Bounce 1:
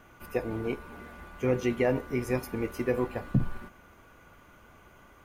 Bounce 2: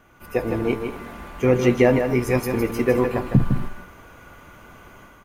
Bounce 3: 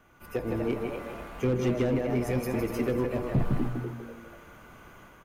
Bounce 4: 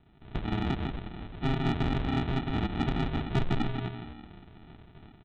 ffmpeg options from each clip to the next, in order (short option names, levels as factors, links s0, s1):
-filter_complex "[0:a]dynaudnorm=f=210:g=3:m=2.82,asplit=2[s0][s1];[s1]aecho=0:1:158|235:0.473|0.133[s2];[s0][s2]amix=inputs=2:normalize=0"
-filter_complex "[0:a]asplit=5[s0][s1][s2][s3][s4];[s1]adelay=245,afreqshift=110,volume=0.355[s5];[s2]adelay=490,afreqshift=220,volume=0.117[s6];[s3]adelay=735,afreqshift=330,volume=0.0385[s7];[s4]adelay=980,afreqshift=440,volume=0.0127[s8];[s0][s5][s6][s7][s8]amix=inputs=5:normalize=0,volume=5.01,asoftclip=hard,volume=0.2,acrossover=split=420[s9][s10];[s10]acompressor=threshold=0.0398:ratio=6[s11];[s9][s11]amix=inputs=2:normalize=0,volume=0.531"
-af "aresample=8000,acrusher=samples=15:mix=1:aa=0.000001,aresample=44100,asoftclip=type=tanh:threshold=0.106"